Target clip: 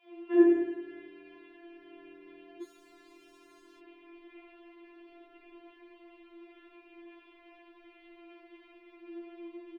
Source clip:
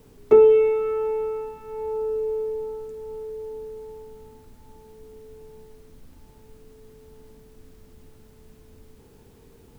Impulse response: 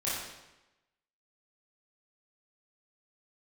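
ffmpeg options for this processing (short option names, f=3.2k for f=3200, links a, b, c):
-filter_complex "[0:a]acrossover=split=160|600[a][b][c];[b]adelay=50[d];[a]adelay=80[e];[e][d][c]amix=inputs=3:normalize=0[f];[1:a]atrim=start_sample=2205,asetrate=48510,aresample=44100[g];[f][g]afir=irnorm=-1:irlink=0,highpass=f=150:t=q:w=0.5412,highpass=f=150:t=q:w=1.307,lowpass=f=2.8k:t=q:w=0.5176,lowpass=f=2.8k:t=q:w=0.7071,lowpass=f=2.8k:t=q:w=1.932,afreqshift=-51,highshelf=f=2.1k:g=-11.5,acrossover=split=370|1100[h][i][j];[h]acompressor=threshold=-41dB:ratio=6[k];[k][i][j]amix=inputs=3:normalize=0,aexciter=amount=3.8:drive=6.4:freq=2.1k,asettb=1/sr,asplit=3[l][m][n];[l]atrim=end=2.624[o];[m]atrim=start=2.62:end=3.8,asetpts=PTS-STARTPTS,afade=t=in:d=0.004:c=qsin,afade=t=out:st=1.176:d=0.004:c=qsin,volume=33dB,asoftclip=hard,volume=-33dB[p];[n]atrim=start=3.796[q];[o][p]acrossfade=d=0.004:c1=hsin:c2=qsin[r];[r][q]acrossfade=d=0.004:c1=qsin:c2=hsin,afftfilt=real='re*4*eq(mod(b,16),0)':imag='im*4*eq(mod(b,16),0)':win_size=2048:overlap=0.75,volume=5.5dB"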